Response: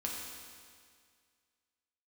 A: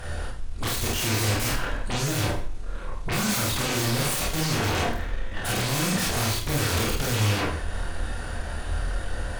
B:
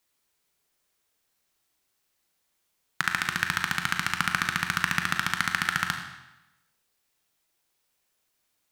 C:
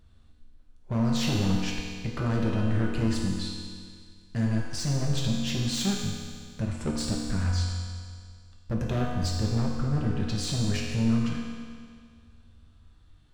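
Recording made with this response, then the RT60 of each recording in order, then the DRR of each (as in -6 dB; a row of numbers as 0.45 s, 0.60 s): C; 0.50 s, 1.0 s, 2.0 s; -4.0 dB, 4.0 dB, -2.5 dB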